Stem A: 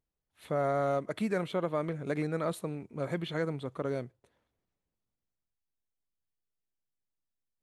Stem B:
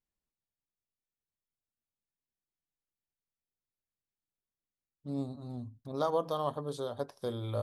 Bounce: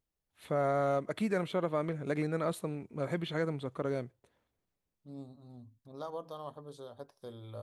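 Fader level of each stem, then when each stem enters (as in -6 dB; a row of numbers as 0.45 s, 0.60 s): -0.5 dB, -10.5 dB; 0.00 s, 0.00 s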